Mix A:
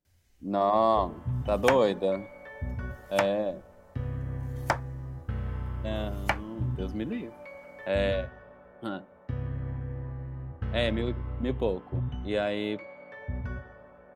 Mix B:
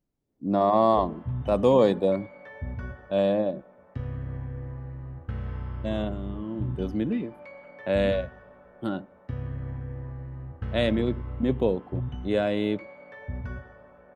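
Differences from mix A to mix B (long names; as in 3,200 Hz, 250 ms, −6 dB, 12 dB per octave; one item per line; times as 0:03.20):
speech: add low-shelf EQ 480 Hz +8 dB
second sound: muted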